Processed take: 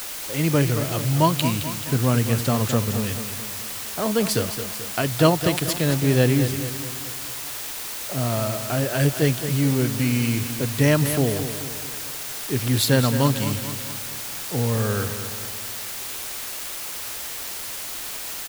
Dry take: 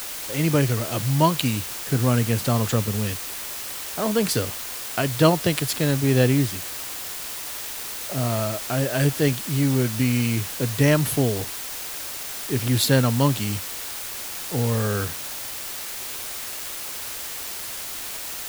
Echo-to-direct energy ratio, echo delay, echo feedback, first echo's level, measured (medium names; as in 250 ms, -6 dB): -8.5 dB, 217 ms, 51%, -10.0 dB